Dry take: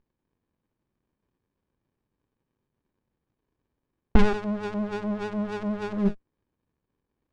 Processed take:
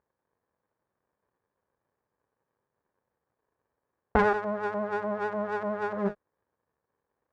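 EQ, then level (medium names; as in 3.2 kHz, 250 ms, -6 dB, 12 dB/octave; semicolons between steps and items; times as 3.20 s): high-pass 66 Hz; bass shelf 130 Hz +3.5 dB; high-order bell 920 Hz +14 dB 2.5 oct; -9.0 dB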